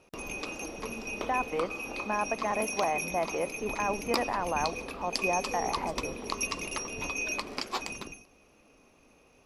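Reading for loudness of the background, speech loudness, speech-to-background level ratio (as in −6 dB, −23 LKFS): −34.5 LKFS, −33.5 LKFS, 1.0 dB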